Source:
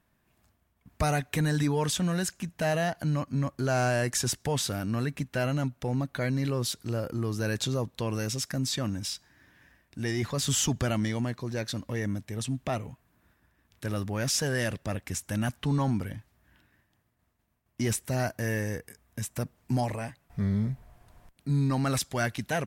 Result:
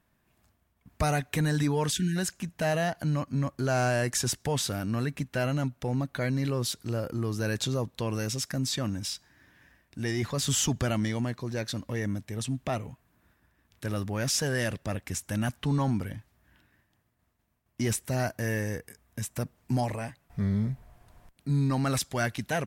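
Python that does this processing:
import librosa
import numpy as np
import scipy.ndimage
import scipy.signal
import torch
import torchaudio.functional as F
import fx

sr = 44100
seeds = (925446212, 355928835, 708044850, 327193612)

y = fx.spec_erase(x, sr, start_s=1.92, length_s=0.25, low_hz=420.0, high_hz=1400.0)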